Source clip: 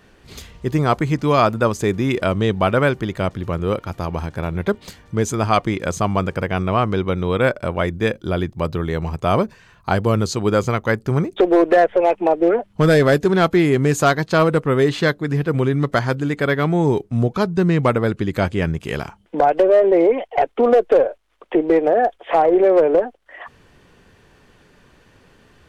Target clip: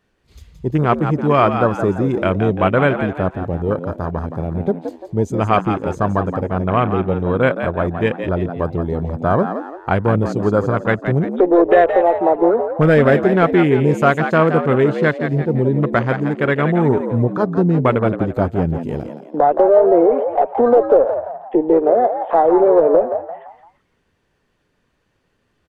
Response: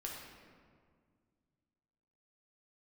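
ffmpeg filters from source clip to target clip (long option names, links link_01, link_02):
-filter_complex "[0:a]afwtdn=0.0631,asplit=5[link_01][link_02][link_03][link_04][link_05];[link_02]adelay=171,afreqshift=80,volume=-8.5dB[link_06];[link_03]adelay=342,afreqshift=160,volume=-17.1dB[link_07];[link_04]adelay=513,afreqshift=240,volume=-25.8dB[link_08];[link_05]adelay=684,afreqshift=320,volume=-34.4dB[link_09];[link_01][link_06][link_07][link_08][link_09]amix=inputs=5:normalize=0,volume=1.5dB"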